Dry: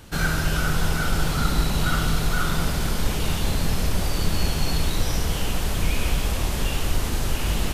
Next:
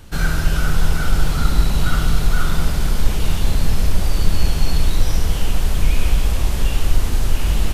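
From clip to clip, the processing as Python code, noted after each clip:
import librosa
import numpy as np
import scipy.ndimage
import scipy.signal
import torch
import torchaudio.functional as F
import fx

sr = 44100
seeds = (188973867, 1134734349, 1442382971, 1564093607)

y = fx.low_shelf(x, sr, hz=64.0, db=11.0)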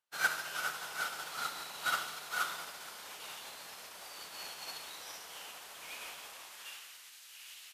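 y = fx.filter_sweep_highpass(x, sr, from_hz=830.0, to_hz=2300.0, start_s=6.27, end_s=7.17, q=0.86)
y = fx.quant_dither(y, sr, seeds[0], bits=12, dither='none')
y = fx.upward_expand(y, sr, threshold_db=-48.0, expansion=2.5)
y = y * librosa.db_to_amplitude(-2.0)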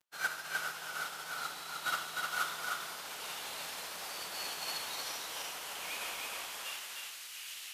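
y = fx.rider(x, sr, range_db=5, speed_s=2.0)
y = fx.dmg_crackle(y, sr, seeds[1], per_s=26.0, level_db=-51.0)
y = y + 10.0 ** (-3.0 / 20.0) * np.pad(y, (int(306 * sr / 1000.0), 0))[:len(y)]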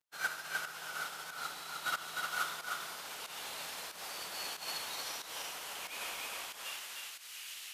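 y = fx.volume_shaper(x, sr, bpm=92, per_beat=1, depth_db=-11, release_ms=168.0, shape='fast start')
y = y * librosa.db_to_amplitude(-1.0)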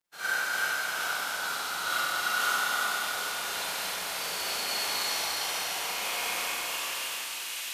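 y = fx.rev_schroeder(x, sr, rt60_s=3.4, comb_ms=32, drr_db=-10.0)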